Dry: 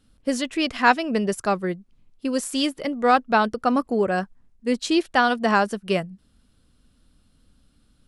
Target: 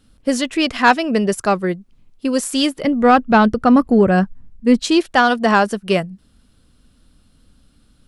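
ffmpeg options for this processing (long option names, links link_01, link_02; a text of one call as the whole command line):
ffmpeg -i in.wav -filter_complex "[0:a]acontrast=56,asettb=1/sr,asplit=3[link_01][link_02][link_03];[link_01]atrim=end=2.834[link_04];[link_02]atrim=start=2.83:end=4.84,asetpts=PTS-STARTPTS,afade=type=in:duration=0.004:curve=qsin,afade=type=out:start_time=2.006:duration=0.004:curve=qsin,bass=frequency=250:gain=11,treble=frequency=4000:gain=-5[link_05];[link_03]atrim=start=4.836[link_06];[link_04][link_05]acrossfade=duration=0.004:curve1=hsin:curve2=qsin[link_07];[link_07][link_06]acrossfade=duration=0.004:curve1=qsin:curve2=hsin" out.wav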